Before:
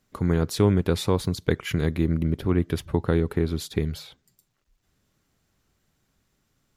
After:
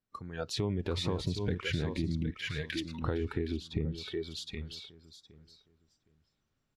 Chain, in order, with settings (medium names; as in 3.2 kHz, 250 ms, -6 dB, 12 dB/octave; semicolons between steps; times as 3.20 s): 0.79–1.63 s: companding laws mixed up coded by mu; peak limiter -17 dBFS, peak gain reduction 9 dB; 2.30–3.02 s: high-pass 1.3 kHz 24 dB/octave; on a send: feedback delay 765 ms, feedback 23%, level -6 dB; on the sum: level rider gain up to 8 dB; 3.54–3.98 s: treble shelf 2.7 kHz -12 dB; spectral noise reduction 16 dB; compression 6:1, threshold -27 dBFS, peak gain reduction 13 dB; low-pass 4.7 kHz 12 dB/octave; band-stop 2 kHz, Q 26; trim -2.5 dB